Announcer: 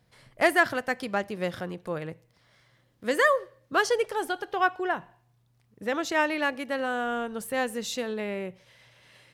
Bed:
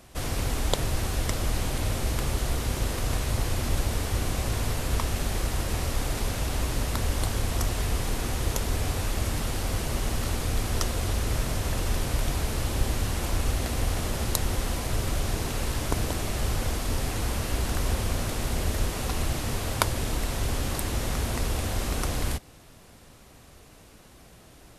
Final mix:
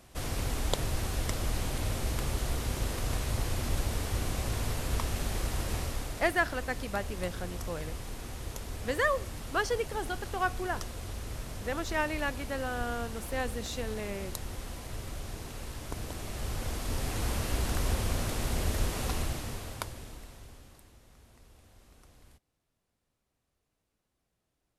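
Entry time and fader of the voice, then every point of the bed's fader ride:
5.80 s, -6.0 dB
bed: 5.76 s -4.5 dB
6.32 s -12 dB
15.82 s -12 dB
17.28 s -3 dB
19.11 s -3 dB
21.01 s -30 dB

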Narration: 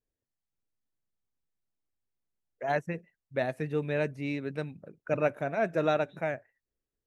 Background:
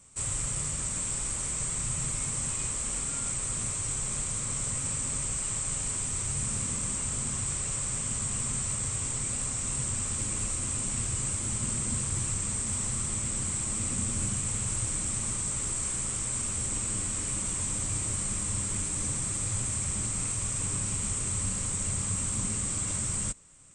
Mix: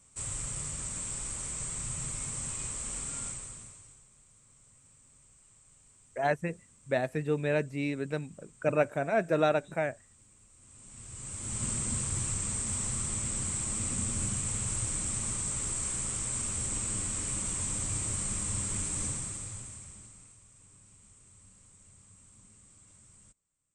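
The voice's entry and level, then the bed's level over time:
3.55 s, +1.0 dB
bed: 3.24 s -5 dB
4.1 s -29 dB
10.5 s -29 dB
11.63 s -2 dB
19.04 s -2 dB
20.45 s -27 dB

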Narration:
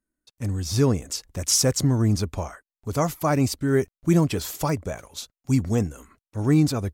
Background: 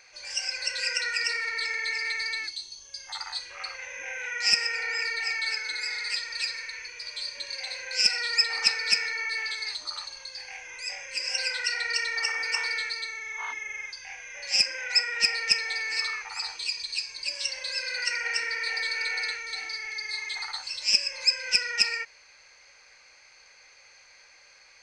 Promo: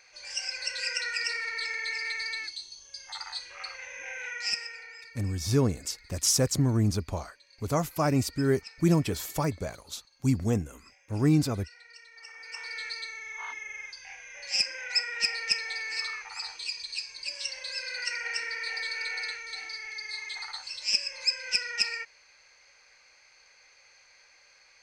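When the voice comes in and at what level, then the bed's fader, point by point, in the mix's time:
4.75 s, -4.0 dB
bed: 4.28 s -3 dB
5.25 s -23.5 dB
12.1 s -23.5 dB
12.91 s -4 dB

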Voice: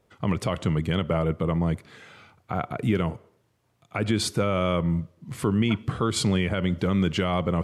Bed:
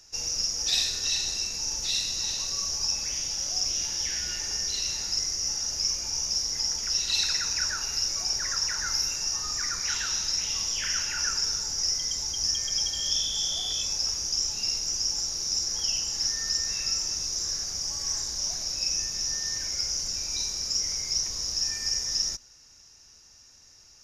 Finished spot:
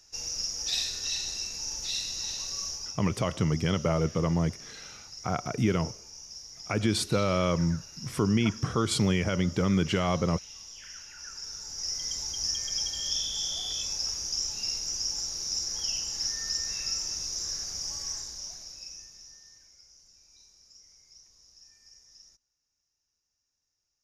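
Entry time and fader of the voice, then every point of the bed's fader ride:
2.75 s, -2.0 dB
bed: 2.68 s -4.5 dB
3.03 s -16.5 dB
11.17 s -16.5 dB
12.09 s -3.5 dB
17.96 s -3.5 dB
19.8 s -27.5 dB

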